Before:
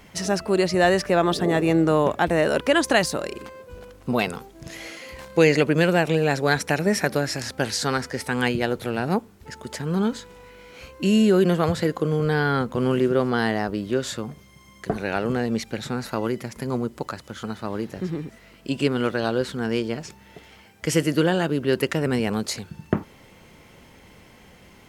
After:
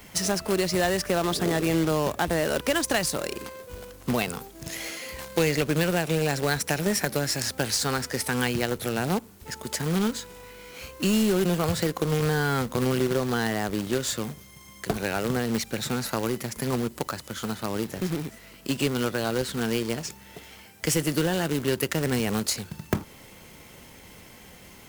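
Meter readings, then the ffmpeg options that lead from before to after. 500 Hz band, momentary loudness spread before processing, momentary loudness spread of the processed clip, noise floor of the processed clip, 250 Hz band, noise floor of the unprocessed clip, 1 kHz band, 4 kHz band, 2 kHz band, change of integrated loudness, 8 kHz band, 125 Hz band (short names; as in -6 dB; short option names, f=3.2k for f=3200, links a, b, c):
-5.0 dB, 15 LU, 13 LU, -49 dBFS, -4.0 dB, -51 dBFS, -4.0 dB, 0.0 dB, -3.5 dB, -3.5 dB, +4.0 dB, -2.5 dB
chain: -filter_complex "[0:a]crystalizer=i=1.5:c=0,acrusher=bits=2:mode=log:mix=0:aa=0.000001,acrossover=split=130[a][b];[b]acompressor=threshold=-24dB:ratio=2.5[c];[a][c]amix=inputs=2:normalize=0"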